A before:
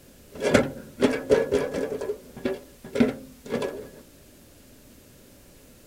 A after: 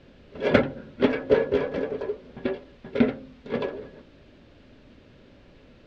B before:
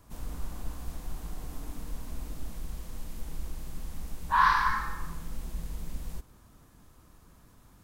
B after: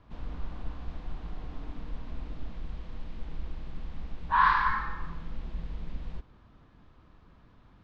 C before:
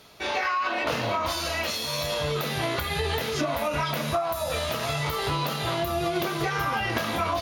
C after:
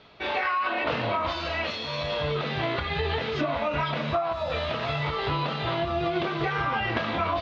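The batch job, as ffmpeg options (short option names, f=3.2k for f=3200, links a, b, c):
-af "lowpass=f=3.8k:w=0.5412,lowpass=f=3.8k:w=1.3066"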